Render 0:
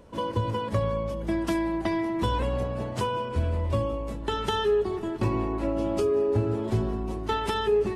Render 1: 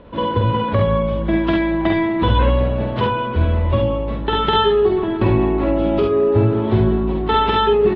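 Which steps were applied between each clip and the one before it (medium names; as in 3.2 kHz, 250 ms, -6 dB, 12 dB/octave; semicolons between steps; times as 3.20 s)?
elliptic low-pass 3.7 kHz, stop band 80 dB; on a send: early reflections 49 ms -3.5 dB, 68 ms -5.5 dB; on the sum: trim +9 dB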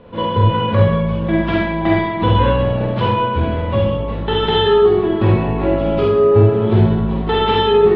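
gated-style reverb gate 230 ms falling, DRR -2.5 dB; trim -2 dB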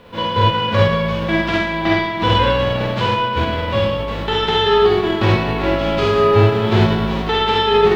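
formants flattened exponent 0.6; trim -1.5 dB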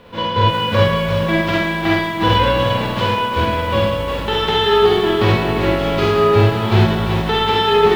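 bit-crushed delay 352 ms, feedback 35%, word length 6-bit, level -8 dB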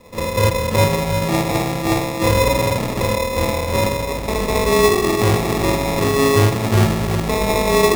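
sample-and-hold 29×; trim -1.5 dB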